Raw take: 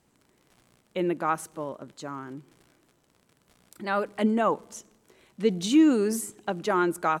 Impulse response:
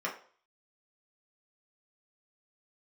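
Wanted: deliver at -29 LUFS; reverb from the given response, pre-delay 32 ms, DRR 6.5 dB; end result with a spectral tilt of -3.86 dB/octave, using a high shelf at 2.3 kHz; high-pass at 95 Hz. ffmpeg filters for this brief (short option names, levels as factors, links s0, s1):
-filter_complex "[0:a]highpass=95,highshelf=f=2300:g=7,asplit=2[s0][s1];[1:a]atrim=start_sample=2205,adelay=32[s2];[s1][s2]afir=irnorm=-1:irlink=0,volume=0.237[s3];[s0][s3]amix=inputs=2:normalize=0,volume=0.631"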